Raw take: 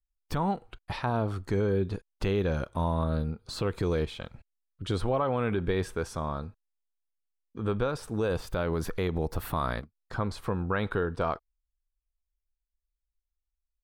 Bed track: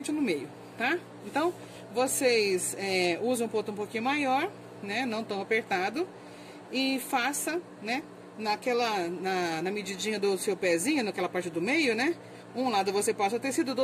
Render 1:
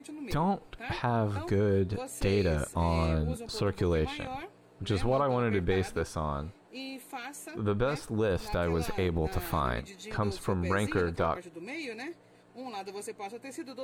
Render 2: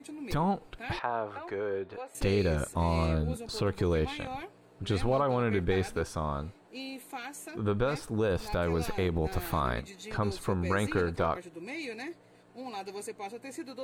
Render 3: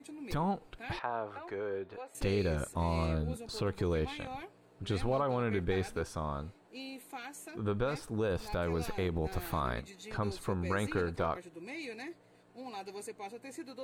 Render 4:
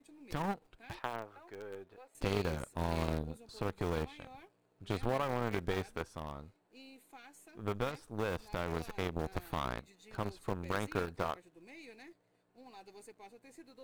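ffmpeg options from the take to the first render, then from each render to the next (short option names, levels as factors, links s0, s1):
-filter_complex "[1:a]volume=0.237[s0];[0:a][s0]amix=inputs=2:normalize=0"
-filter_complex "[0:a]asettb=1/sr,asplit=3[s0][s1][s2];[s0]atrim=end=0.994[s3];[s1]atrim=start=0.99:end=2.15,asetpts=PTS-STARTPTS,afade=t=in:d=0.004:c=qsin,afade=t=out:st=1.156:d=0.004:c=qsin,acrossover=split=400 3100:gain=0.0891 1 0.126[s4][s5][s6];[s4][s5][s6]amix=inputs=3:normalize=0[s7];[s2]atrim=start=2.146[s8];[s3][s7]acrossfade=d=0.004:c1=hsin:c2=qsin[s9];[s9][s8]acrossfade=d=0.004:c1=qsin:c2=hsin"
-af "volume=0.631"
-filter_complex "[0:a]asplit=2[s0][s1];[s1]acrusher=bits=6:dc=4:mix=0:aa=0.000001,volume=0.316[s2];[s0][s2]amix=inputs=2:normalize=0,aeval=exprs='0.141*(cos(1*acos(clip(val(0)/0.141,-1,1)))-cos(1*PI/2))+0.0355*(cos(3*acos(clip(val(0)/0.141,-1,1)))-cos(3*PI/2))':c=same"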